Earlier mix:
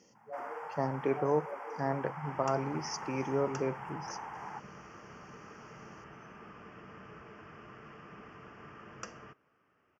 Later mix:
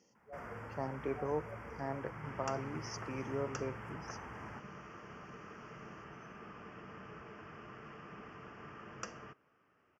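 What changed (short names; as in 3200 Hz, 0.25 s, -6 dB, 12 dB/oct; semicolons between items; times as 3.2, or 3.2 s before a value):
speech -7.0 dB; first sound: remove resonant high-pass 810 Hz, resonance Q 4.4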